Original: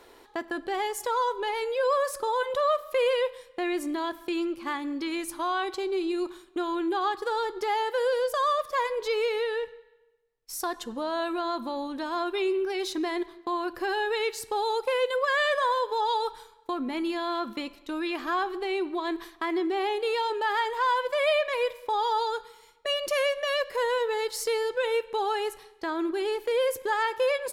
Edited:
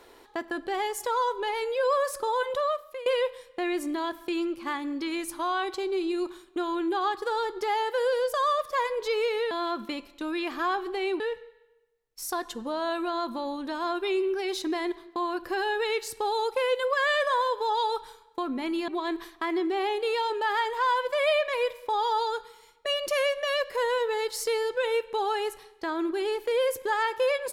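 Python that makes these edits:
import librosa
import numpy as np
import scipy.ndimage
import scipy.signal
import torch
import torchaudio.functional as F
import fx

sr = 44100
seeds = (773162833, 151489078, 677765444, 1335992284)

y = fx.edit(x, sr, fx.fade_out_to(start_s=2.49, length_s=0.57, floor_db=-19.0),
    fx.move(start_s=17.19, length_s=1.69, to_s=9.51), tone=tone)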